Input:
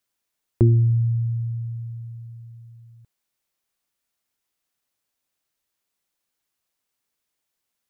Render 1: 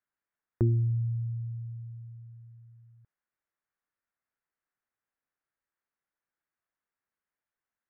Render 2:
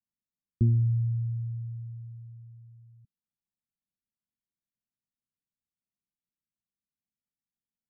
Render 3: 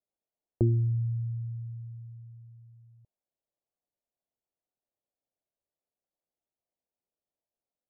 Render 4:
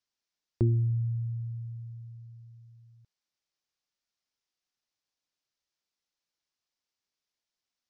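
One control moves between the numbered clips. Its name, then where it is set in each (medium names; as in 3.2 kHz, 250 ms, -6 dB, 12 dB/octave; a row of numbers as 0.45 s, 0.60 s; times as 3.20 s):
four-pole ladder low-pass, frequency: 2 kHz, 250 Hz, 780 Hz, 6.4 kHz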